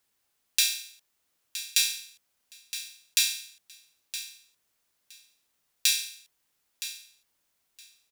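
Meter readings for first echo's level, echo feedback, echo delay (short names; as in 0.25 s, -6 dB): -12.5 dB, 16%, 0.967 s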